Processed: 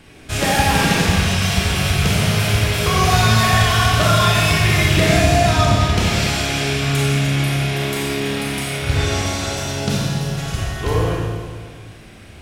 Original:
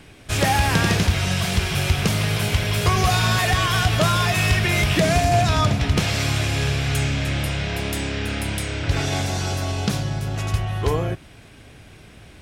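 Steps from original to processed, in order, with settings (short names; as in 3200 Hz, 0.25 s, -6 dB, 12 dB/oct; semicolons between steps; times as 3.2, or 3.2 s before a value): Schroeder reverb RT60 1.8 s, combs from 28 ms, DRR -4 dB; gain -1 dB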